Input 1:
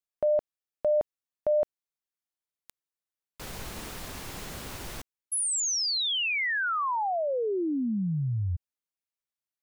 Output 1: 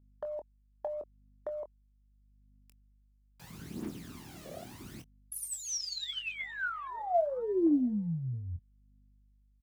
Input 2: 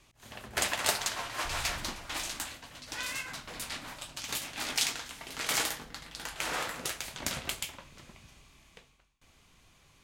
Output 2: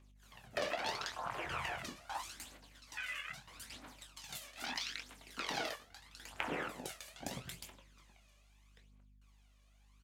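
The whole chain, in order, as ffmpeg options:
-filter_complex "[0:a]afwtdn=0.0178,highpass=210,acrossover=split=590[a][b];[a]alimiter=level_in=9dB:limit=-24dB:level=0:latency=1,volume=-9dB[c];[b]acompressor=threshold=-43dB:ratio=8:attack=4.9:release=105:knee=1:detection=peak[d];[c][d]amix=inputs=2:normalize=0,aeval=exprs='val(0)+0.000224*(sin(2*PI*50*n/s)+sin(2*PI*2*50*n/s)/2+sin(2*PI*3*50*n/s)/3+sin(2*PI*4*50*n/s)/4+sin(2*PI*5*50*n/s)/5)':c=same,aphaser=in_gain=1:out_gain=1:delay=1.8:decay=0.64:speed=0.78:type=triangular,asplit=2[e][f];[f]adelay=24,volume=-10dB[g];[e][g]amix=inputs=2:normalize=0,volume=2dB"

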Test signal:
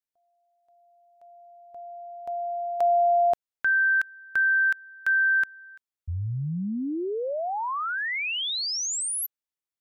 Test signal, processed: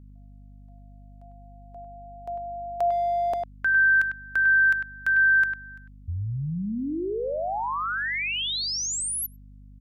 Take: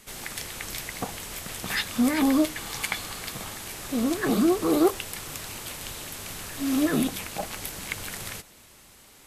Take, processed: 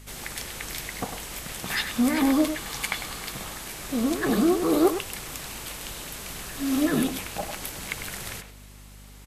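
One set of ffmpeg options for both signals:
-filter_complex "[0:a]aeval=exprs='val(0)+0.00501*(sin(2*PI*50*n/s)+sin(2*PI*2*50*n/s)/2+sin(2*PI*3*50*n/s)/3+sin(2*PI*4*50*n/s)/4+sin(2*PI*5*50*n/s)/5)':c=same,asplit=2[a][b];[b]adelay=100,highpass=300,lowpass=3.4k,asoftclip=type=hard:threshold=-18.5dB,volume=-7dB[c];[a][c]amix=inputs=2:normalize=0"

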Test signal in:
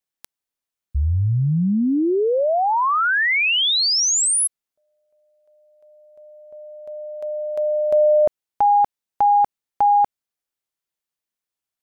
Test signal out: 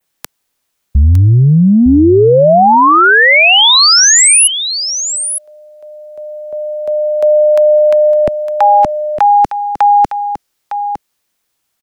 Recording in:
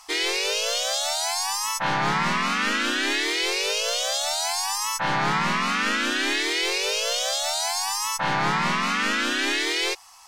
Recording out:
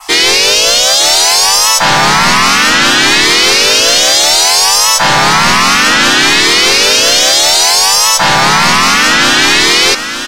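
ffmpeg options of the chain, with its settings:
-filter_complex "[0:a]adynamicequalizer=threshold=0.00891:dfrequency=5200:dqfactor=1.3:tfrequency=5200:tqfactor=1.3:attack=5:release=100:ratio=0.375:range=3:mode=boostabove:tftype=bell,acrossover=split=180|380|1400[a][b][c][d];[a]acompressor=threshold=-23dB:ratio=4[e];[b]acompressor=threshold=-35dB:ratio=4[f];[c]acompressor=threshold=-23dB:ratio=4[g];[d]acompressor=threshold=-19dB:ratio=4[h];[e][f][g][h]amix=inputs=4:normalize=0,apsyclip=23dB,asplit=2[i][j];[j]aecho=0:1:908:0.316[k];[i][k]amix=inputs=2:normalize=0,volume=-4dB"

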